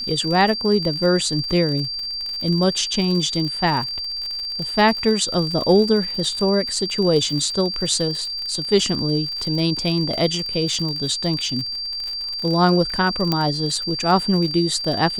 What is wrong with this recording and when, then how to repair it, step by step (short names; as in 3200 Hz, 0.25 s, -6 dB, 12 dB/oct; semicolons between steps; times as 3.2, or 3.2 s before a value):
crackle 50/s -26 dBFS
tone 4700 Hz -25 dBFS
13.32 pop -6 dBFS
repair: de-click; notch 4700 Hz, Q 30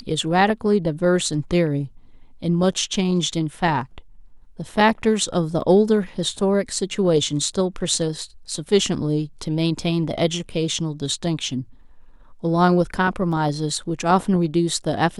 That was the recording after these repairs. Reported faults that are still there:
13.32 pop